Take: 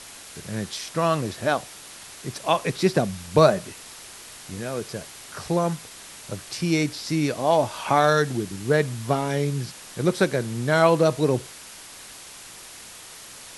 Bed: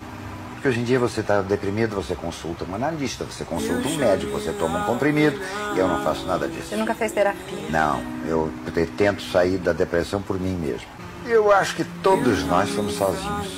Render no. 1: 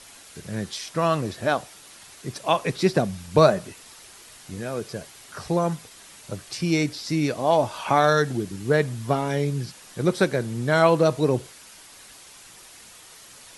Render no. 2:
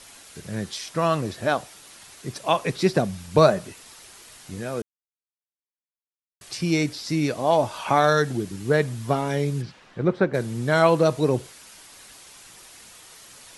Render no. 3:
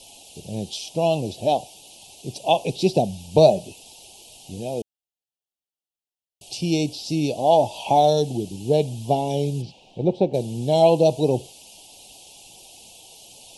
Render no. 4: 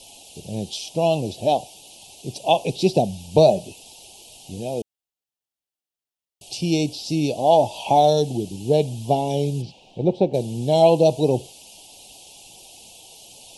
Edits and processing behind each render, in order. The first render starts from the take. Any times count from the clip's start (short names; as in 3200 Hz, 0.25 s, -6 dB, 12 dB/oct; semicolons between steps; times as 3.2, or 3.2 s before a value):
denoiser 6 dB, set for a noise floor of -43 dBFS
4.82–6.41 mute; 9.61–10.33 LPF 3800 Hz -> 1500 Hz
elliptic band-stop 800–2800 Hz, stop band 40 dB; bell 1400 Hz +12 dB 1.7 oct
gain +1 dB; limiter -3 dBFS, peak gain reduction 2.5 dB